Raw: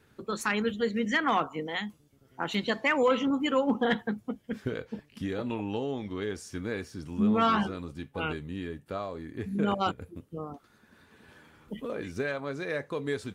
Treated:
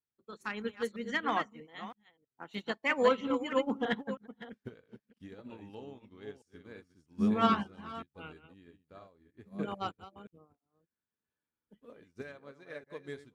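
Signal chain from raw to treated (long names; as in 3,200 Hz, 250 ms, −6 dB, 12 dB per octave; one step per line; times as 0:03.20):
delay that plays each chunk backwards 321 ms, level −6 dB
expander for the loud parts 2.5 to 1, over −47 dBFS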